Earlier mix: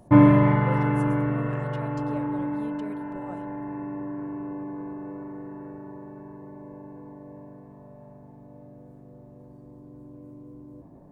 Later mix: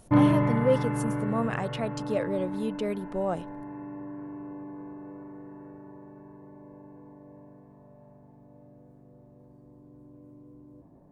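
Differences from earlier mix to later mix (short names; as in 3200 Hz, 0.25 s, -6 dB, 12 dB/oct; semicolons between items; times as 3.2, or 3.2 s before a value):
speech +12.0 dB; background -6.0 dB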